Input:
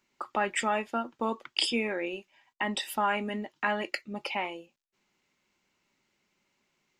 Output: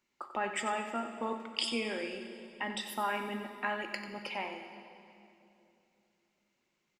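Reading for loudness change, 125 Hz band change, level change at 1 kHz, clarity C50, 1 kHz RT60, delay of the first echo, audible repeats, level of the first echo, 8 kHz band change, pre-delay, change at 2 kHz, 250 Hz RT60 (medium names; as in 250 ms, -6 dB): -5.0 dB, -6.0 dB, -5.0 dB, 6.0 dB, 2.6 s, 92 ms, 1, -11.0 dB, -5.0 dB, 13 ms, -5.0 dB, 3.4 s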